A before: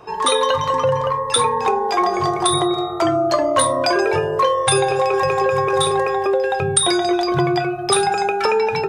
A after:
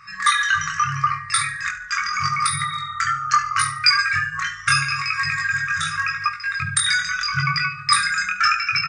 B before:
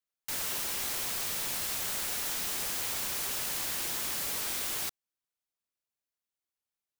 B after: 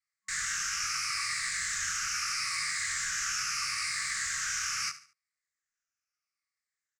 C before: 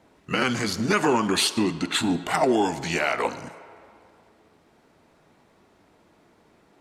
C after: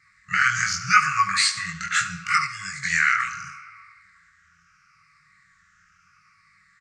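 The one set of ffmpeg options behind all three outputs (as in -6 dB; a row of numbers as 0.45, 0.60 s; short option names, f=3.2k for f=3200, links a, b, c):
-filter_complex "[0:a]afftfilt=real='re*pow(10,8/40*sin(2*PI*(0.96*log(max(b,1)*sr/1024/100)/log(2)-(-0.77)*(pts-256)/sr)))':imag='im*pow(10,8/40*sin(2*PI*(0.96*log(max(b,1)*sr/1024/100)/log(2)-(-0.77)*(pts-256)/sr)))':win_size=1024:overlap=0.75,firequalizer=gain_entry='entry(120,0);entry(260,-9);entry(390,-27);entry(690,13);entry(1400,11);entry(2100,14);entry(3300,-6);entry(5000,11);entry(7500,8);entry(14000,-26)':delay=0.05:min_phase=1,flanger=delay=19.5:depth=5:speed=0.78,afftfilt=real='re*(1-between(b*sr/4096,200,1100))':imag='im*(1-between(b*sr/4096,200,1100))':win_size=4096:overlap=0.75,asplit=2[a][b];[b]aecho=0:1:72|144|216:0.188|0.0622|0.0205[c];[a][c]amix=inputs=2:normalize=0,volume=-1.5dB"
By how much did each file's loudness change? 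-2.5, +0.5, +2.0 LU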